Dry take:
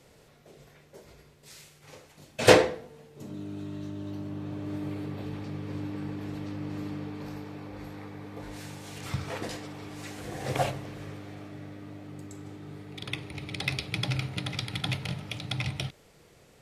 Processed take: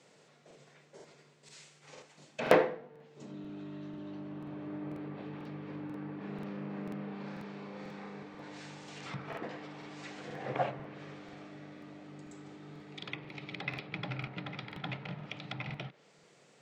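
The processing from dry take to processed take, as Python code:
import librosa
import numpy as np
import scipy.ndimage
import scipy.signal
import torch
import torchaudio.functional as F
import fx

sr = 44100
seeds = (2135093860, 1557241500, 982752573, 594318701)

y = scipy.signal.sosfilt(scipy.signal.ellip(3, 1.0, 40, [150.0, 7900.0], 'bandpass', fs=sr, output='sos'), x)
y = fx.env_lowpass_down(y, sr, base_hz=2000.0, full_db=-33.5)
y = fx.low_shelf(y, sr, hz=500.0, db=-3.5)
y = fx.room_flutter(y, sr, wall_m=6.0, rt60_s=0.46, at=(6.17, 8.23))
y = fx.buffer_crackle(y, sr, first_s=0.46, period_s=0.49, block=2048, kind='repeat')
y = y * 10.0 ** (-2.0 / 20.0)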